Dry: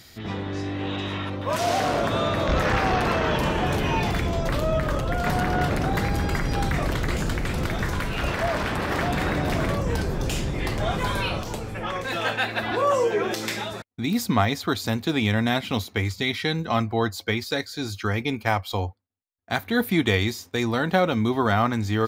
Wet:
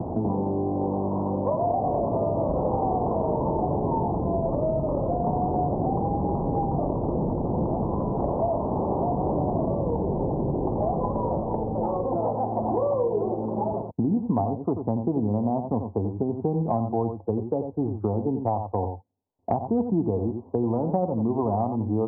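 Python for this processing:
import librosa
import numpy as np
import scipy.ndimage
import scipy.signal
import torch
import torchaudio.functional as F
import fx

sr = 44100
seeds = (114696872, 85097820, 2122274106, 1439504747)

p1 = scipy.signal.sosfilt(scipy.signal.butter(12, 970.0, 'lowpass', fs=sr, output='sos'), x)
p2 = fx.low_shelf(p1, sr, hz=81.0, db=-11.5)
p3 = p2 + fx.echo_single(p2, sr, ms=87, db=-8.5, dry=0)
y = fx.band_squash(p3, sr, depth_pct=100)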